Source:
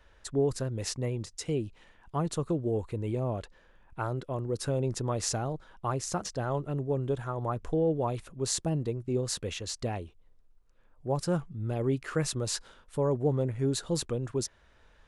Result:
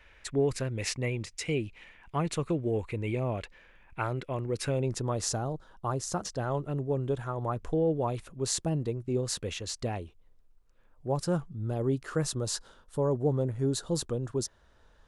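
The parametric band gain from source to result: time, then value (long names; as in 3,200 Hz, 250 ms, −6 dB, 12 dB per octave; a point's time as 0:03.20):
parametric band 2,300 Hz 0.7 octaves
0:04.63 +14 dB
0:04.93 +3 dB
0:05.42 −9 dB
0:05.96 −9 dB
0:06.44 +0.5 dB
0:11.08 +0.5 dB
0:11.62 −8 dB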